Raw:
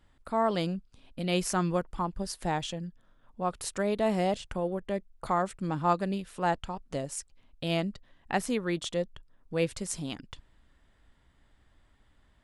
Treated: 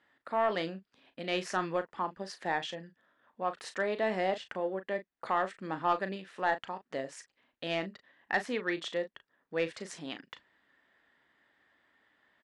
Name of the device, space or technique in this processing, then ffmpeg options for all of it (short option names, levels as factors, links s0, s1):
intercom: -filter_complex "[0:a]highpass=310,lowpass=4400,equalizer=f=1800:t=o:w=0.41:g=9,asoftclip=type=tanh:threshold=0.168,asplit=2[s0][s1];[s1]adelay=37,volume=0.282[s2];[s0][s2]amix=inputs=2:normalize=0,volume=0.841"